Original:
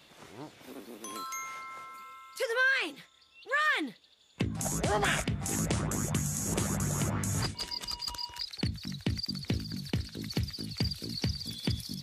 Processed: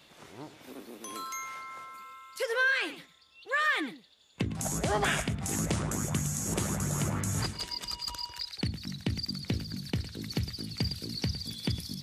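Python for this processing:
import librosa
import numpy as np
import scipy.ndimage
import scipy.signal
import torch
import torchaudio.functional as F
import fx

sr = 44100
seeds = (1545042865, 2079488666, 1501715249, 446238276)

y = x + 10.0 ** (-14.0 / 20.0) * np.pad(x, (int(109 * sr / 1000.0), 0))[:len(x)]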